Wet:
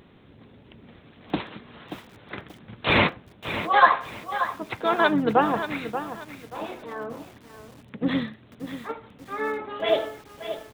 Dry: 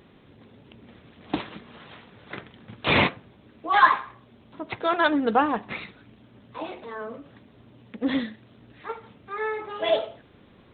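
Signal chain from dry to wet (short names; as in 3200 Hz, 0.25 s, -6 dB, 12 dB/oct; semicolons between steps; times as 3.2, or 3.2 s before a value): harmoniser -12 st -17 dB, -7 st -9 dB; lo-fi delay 0.582 s, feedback 35%, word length 7-bit, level -10 dB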